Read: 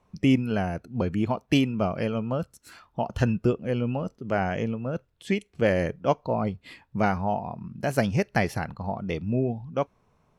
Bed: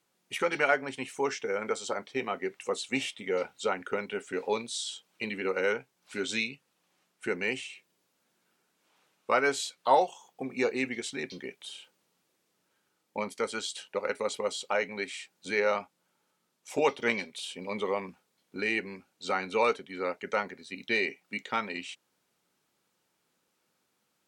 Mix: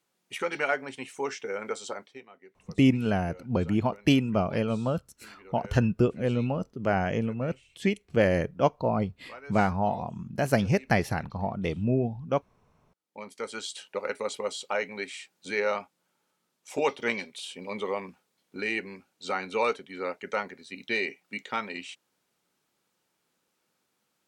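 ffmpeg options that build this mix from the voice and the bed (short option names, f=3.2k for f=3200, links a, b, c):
-filter_complex "[0:a]adelay=2550,volume=0dB[a];[1:a]volume=17.5dB,afade=t=out:st=1.86:d=0.38:silence=0.125893,afade=t=in:st=12.96:d=0.76:silence=0.105925[b];[a][b]amix=inputs=2:normalize=0"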